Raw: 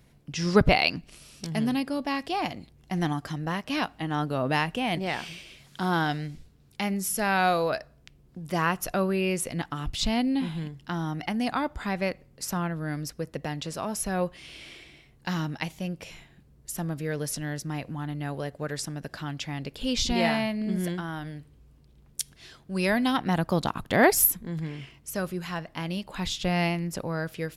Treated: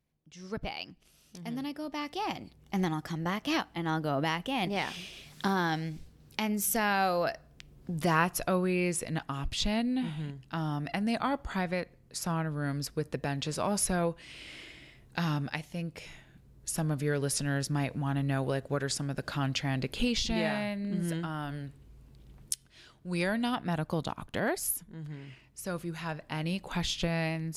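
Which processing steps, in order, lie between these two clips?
Doppler pass-by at 7.94, 21 m/s, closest 14 m; recorder AGC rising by 6.4 dB/s

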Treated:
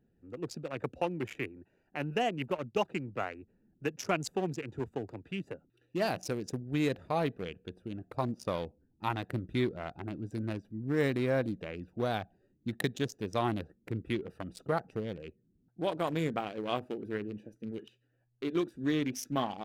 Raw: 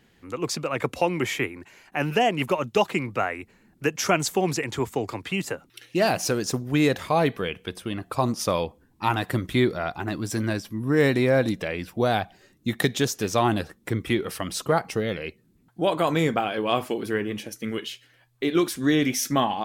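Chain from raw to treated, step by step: Wiener smoothing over 41 samples; gain -8.5 dB

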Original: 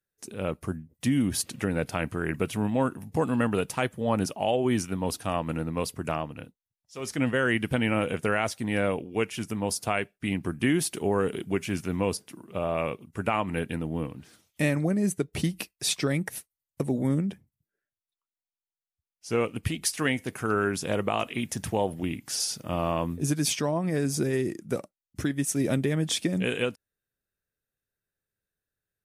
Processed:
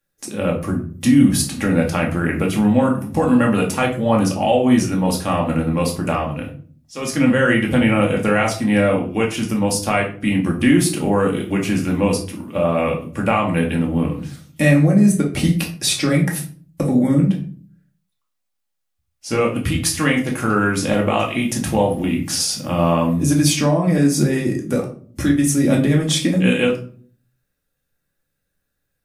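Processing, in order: in parallel at -1 dB: compressor, threshold -33 dBFS, peak gain reduction 12.5 dB; on the sum: shoebox room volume 380 m³, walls furnished, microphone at 2.3 m; gain +3 dB

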